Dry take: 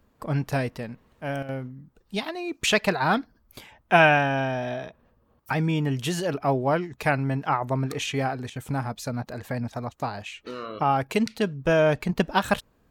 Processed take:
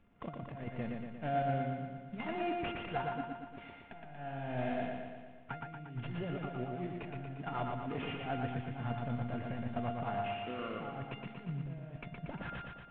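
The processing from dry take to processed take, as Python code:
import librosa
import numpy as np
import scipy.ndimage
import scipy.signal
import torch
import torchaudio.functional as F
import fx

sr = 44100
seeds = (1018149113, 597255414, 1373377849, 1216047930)

p1 = fx.cvsd(x, sr, bps=16000)
p2 = fx.peak_eq(p1, sr, hz=180.0, db=6.5, octaves=1.6)
p3 = fx.over_compress(p2, sr, threshold_db=-27.0, ratio=-0.5)
p4 = fx.comb_fb(p3, sr, f0_hz=700.0, decay_s=0.47, harmonics='all', damping=0.0, mix_pct=90)
p5 = p4 + fx.echo_feedback(p4, sr, ms=117, feedback_pct=60, wet_db=-3.5, dry=0)
y = p5 * 10.0 ** (5.5 / 20.0)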